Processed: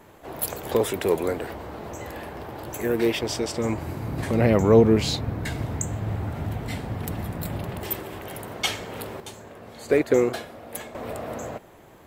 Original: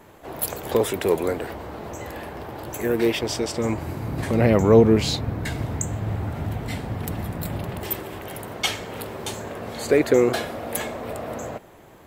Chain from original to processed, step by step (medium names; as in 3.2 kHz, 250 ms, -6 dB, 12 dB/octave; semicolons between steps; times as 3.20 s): 9.20–10.95 s: upward expansion 1.5:1, over -31 dBFS; trim -1.5 dB